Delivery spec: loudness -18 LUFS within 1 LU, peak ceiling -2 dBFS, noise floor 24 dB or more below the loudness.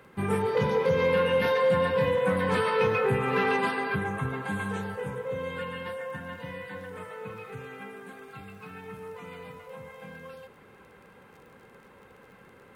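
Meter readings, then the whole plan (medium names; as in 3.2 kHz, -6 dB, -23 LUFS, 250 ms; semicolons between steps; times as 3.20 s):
tick rate 22 per s; loudness -27.0 LUFS; peak level -15.0 dBFS; loudness target -18.0 LUFS
-> de-click; trim +9 dB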